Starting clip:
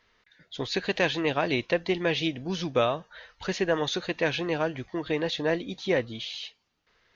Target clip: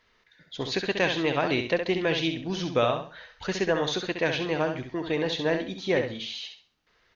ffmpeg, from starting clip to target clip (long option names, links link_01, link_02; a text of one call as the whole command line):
ffmpeg -i in.wav -af "aecho=1:1:67|134|201|268:0.447|0.13|0.0376|0.0109" out.wav